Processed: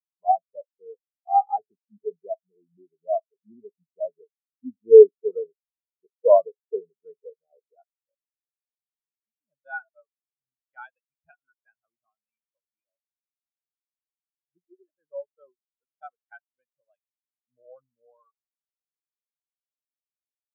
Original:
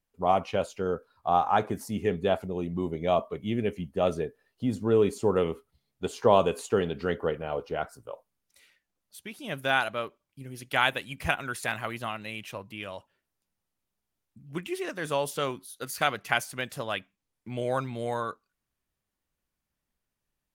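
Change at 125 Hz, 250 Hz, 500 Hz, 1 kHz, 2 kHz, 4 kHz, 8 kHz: below −35 dB, below −10 dB, +6.0 dB, +0.5 dB, −13.5 dB, below −40 dB, below −35 dB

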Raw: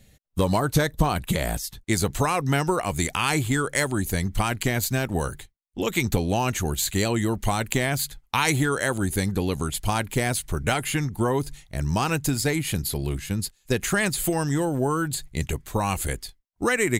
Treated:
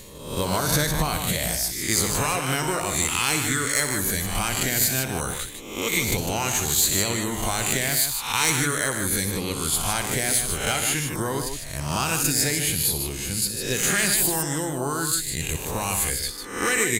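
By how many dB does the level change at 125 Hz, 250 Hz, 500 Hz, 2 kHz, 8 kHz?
−4.0, −3.5, −2.5, +1.5, +8.5 decibels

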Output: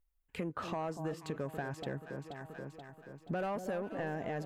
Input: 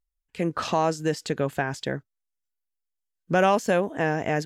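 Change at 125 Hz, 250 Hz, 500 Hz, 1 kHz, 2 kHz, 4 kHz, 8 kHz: −10.5, −11.5, −13.5, −14.5, −15.0, −16.0, −17.5 decibels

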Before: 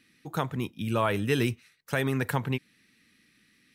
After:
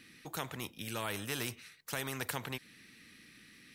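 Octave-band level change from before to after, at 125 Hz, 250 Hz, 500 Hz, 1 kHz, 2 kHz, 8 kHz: −14.5, −14.0, −13.5, −10.5, −7.5, +2.5 decibels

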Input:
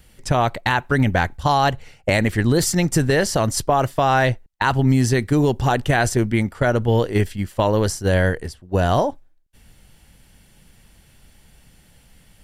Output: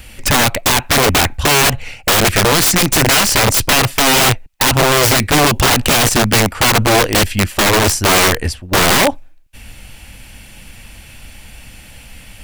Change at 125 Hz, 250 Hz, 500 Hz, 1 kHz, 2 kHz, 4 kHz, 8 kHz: +1.5, +3.0, +4.0, +6.0, +9.5, +16.5, +15.0 decibels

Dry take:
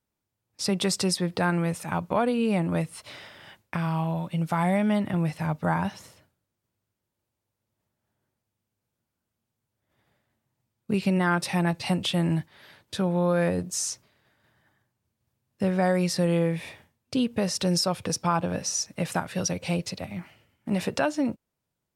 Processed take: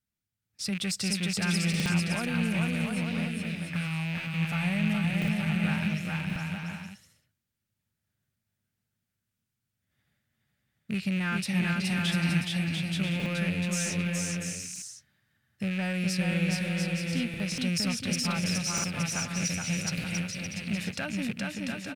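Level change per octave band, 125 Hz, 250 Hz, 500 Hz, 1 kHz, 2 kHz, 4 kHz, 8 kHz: −1.0, −2.0, −11.5, −10.0, +2.5, 0.0, −1.0 decibels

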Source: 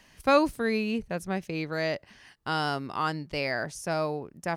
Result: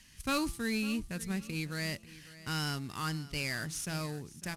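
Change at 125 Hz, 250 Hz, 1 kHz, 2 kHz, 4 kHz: −0.5, −4.5, −11.5, −5.5, −1.5 decibels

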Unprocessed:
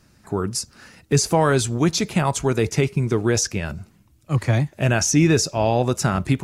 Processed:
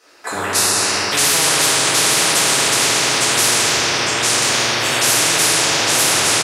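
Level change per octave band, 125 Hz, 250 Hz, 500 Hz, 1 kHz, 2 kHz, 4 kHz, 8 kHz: −10.5, −5.5, −1.0, +6.5, +12.0, +16.0, +12.5 decibels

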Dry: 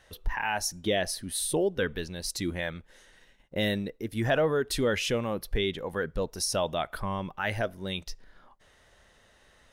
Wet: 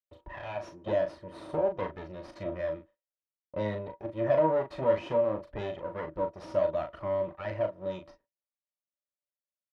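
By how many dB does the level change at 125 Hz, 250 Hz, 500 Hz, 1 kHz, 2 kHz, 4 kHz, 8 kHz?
−5.5 dB, −5.5 dB, +1.5 dB, −1.0 dB, −11.5 dB, below −15 dB, below −30 dB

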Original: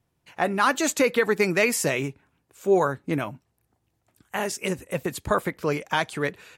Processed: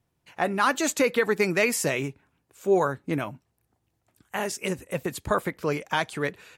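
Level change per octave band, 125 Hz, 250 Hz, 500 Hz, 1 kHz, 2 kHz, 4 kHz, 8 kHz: −1.5, −1.5, −1.5, −1.5, −1.5, −1.5, −1.5 decibels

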